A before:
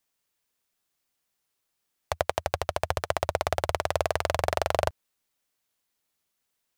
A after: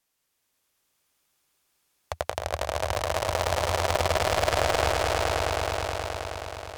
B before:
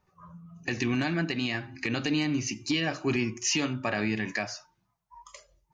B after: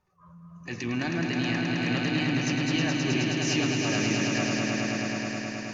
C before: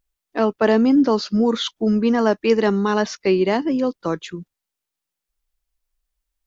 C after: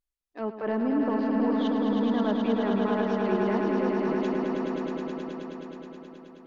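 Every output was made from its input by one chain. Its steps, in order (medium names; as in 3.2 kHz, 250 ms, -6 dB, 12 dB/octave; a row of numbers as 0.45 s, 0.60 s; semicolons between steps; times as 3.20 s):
low-pass that closes with the level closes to 1.9 kHz, closed at -16 dBFS; transient shaper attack -7 dB, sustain -3 dB; echo with a slow build-up 106 ms, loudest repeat 5, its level -5 dB; normalise loudness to -27 LUFS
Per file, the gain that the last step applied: +3.5 dB, -1.5 dB, -11.0 dB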